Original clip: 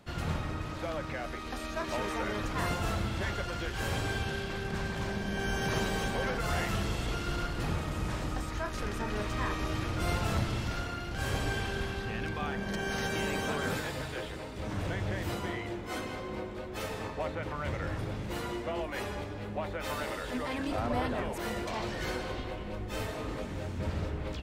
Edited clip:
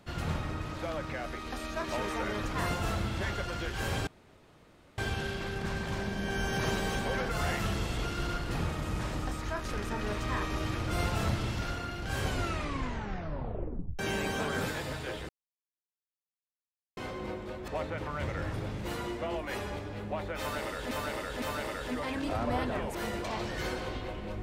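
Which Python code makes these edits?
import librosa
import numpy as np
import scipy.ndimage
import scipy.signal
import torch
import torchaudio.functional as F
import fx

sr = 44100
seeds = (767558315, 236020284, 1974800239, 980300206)

y = fx.edit(x, sr, fx.insert_room_tone(at_s=4.07, length_s=0.91),
    fx.tape_stop(start_s=11.31, length_s=1.77),
    fx.silence(start_s=14.38, length_s=1.68),
    fx.cut(start_s=16.77, length_s=0.36),
    fx.repeat(start_s=19.85, length_s=0.51, count=3), tone=tone)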